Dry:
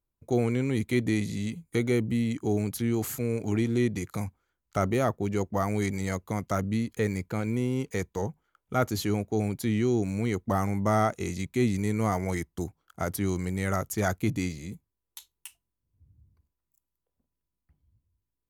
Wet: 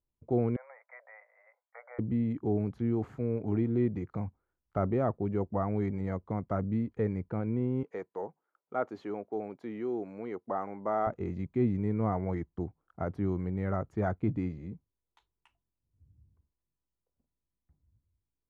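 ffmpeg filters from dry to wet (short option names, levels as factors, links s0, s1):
-filter_complex "[0:a]asettb=1/sr,asplit=3[s0][s1][s2];[s0]atrim=end=0.564[s3];[s1]atrim=start=0.56:end=1.99,asetpts=PTS-STARTPTS,afade=t=in:d=0.004:c=qsin,afade=t=out:st=1.426:d=0.004:c=qsin,asuperpass=centerf=1100:order=20:qfactor=0.68[s4];[s2]atrim=start=1.986[s5];[s3][s4]acrossfade=d=0.004:c1=hsin:c2=qsin[s6];[s6][s5]acrossfade=d=0.004:c1=qsin:c2=hsin,asettb=1/sr,asplit=3[s7][s8][s9];[s7]atrim=end=7.834[s10];[s8]atrim=start=7.83:end=11.07,asetpts=PTS-STARTPTS,afade=t=in:d=0.004:c=qsin,afade=t=out:st=3.236:d=0.004:c=qsin,highpass=410[s11];[s9]atrim=start=11.066[s12];[s10][s11]acrossfade=d=0.004:c1=hsin:c2=qsin[s13];[s13][s12]acrossfade=d=0.004:c1=qsin:c2=hsin,lowpass=1100,volume=0.75"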